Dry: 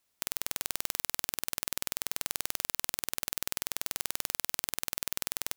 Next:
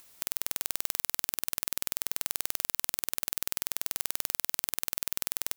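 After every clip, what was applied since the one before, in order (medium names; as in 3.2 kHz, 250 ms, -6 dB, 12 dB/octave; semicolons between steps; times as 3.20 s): treble shelf 9.6 kHz +5.5 dB; upward compressor, threshold -46 dBFS; peak limiter -3.5 dBFS, peak gain reduction 3.5 dB; trim +2 dB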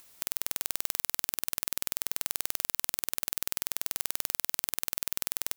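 no audible change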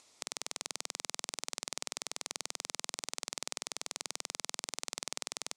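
cabinet simulation 150–7800 Hz, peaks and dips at 190 Hz -7 dB, 1.6 kHz -10 dB, 2.9 kHz -5 dB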